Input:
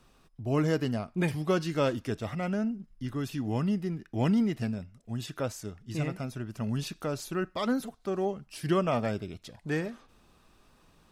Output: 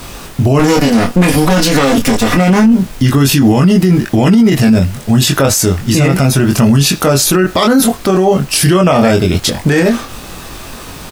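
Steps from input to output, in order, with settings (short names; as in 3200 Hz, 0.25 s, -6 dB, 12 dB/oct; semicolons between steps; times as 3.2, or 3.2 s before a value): 0.59–2.79 minimum comb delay 4.1 ms; high shelf 5300 Hz +7.5 dB; added noise pink -64 dBFS; doubler 22 ms -3.5 dB; maximiser +30.5 dB; gain -1 dB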